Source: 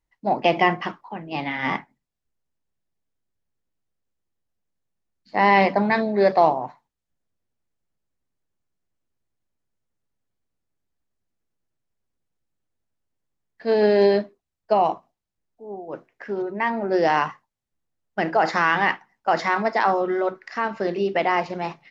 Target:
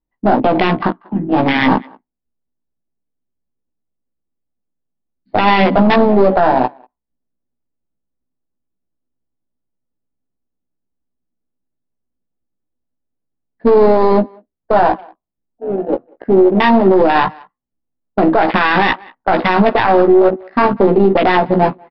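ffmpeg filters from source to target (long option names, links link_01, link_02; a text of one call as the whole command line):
ffmpeg -i in.wav -filter_complex "[0:a]aemphasis=mode=reproduction:type=75fm,afwtdn=0.0562,equalizer=frequency=100:width_type=o:width=0.67:gain=-5,equalizer=frequency=250:width_type=o:width=0.67:gain=7,equalizer=frequency=4000:width_type=o:width=0.67:gain=11,acompressor=threshold=-19dB:ratio=2.5,aeval=exprs='0.335*(cos(1*acos(clip(val(0)/0.335,-1,1)))-cos(1*PI/2))+0.119*(cos(2*acos(clip(val(0)/0.335,-1,1)))-cos(2*PI/2))':channel_layout=same,adynamicsmooth=sensitivity=6:basefreq=1300,asplit=2[link_01][link_02];[link_02]adelay=16,volume=-5dB[link_03];[link_01][link_03]amix=inputs=2:normalize=0,asplit=2[link_04][link_05];[link_05]adelay=190,highpass=300,lowpass=3400,asoftclip=type=hard:threshold=-15dB,volume=-29dB[link_06];[link_04][link_06]amix=inputs=2:normalize=0,aresample=11025,aresample=44100,alimiter=level_in=16dB:limit=-1dB:release=50:level=0:latency=1,volume=-1dB" out.wav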